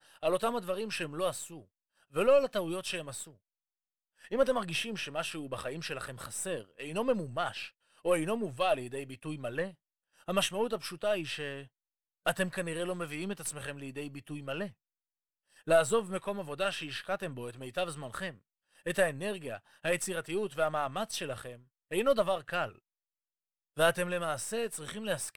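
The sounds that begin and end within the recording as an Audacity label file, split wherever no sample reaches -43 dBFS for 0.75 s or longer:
4.240000	14.690000	sound
15.670000	22.710000	sound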